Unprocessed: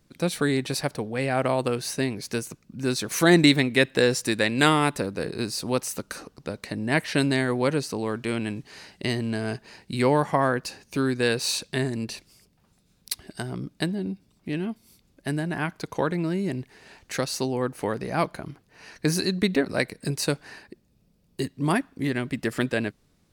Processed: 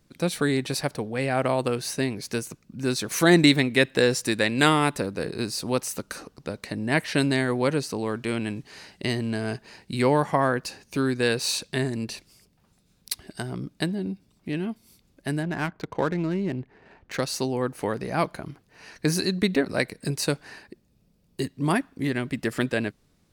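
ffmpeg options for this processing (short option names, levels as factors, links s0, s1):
-filter_complex "[0:a]asettb=1/sr,asplit=3[s0][s1][s2];[s0]atrim=end=15.434[s3];[s1]atrim=start=15.43:end=17.2,asetpts=PTS-STARTPTS,afade=t=in:d=0.004:c=qsin,afade=t=out:st=1.766:d=0.004:c=qsin,adynamicsmooth=sensitivity=7:basefreq=1500[s4];[s2]atrim=start=17.196[s5];[s3][s4]acrossfade=d=0.004:c1=hsin:c2=qsin[s6];[s6][s5]acrossfade=d=0.004:c1=qsin:c2=hsin"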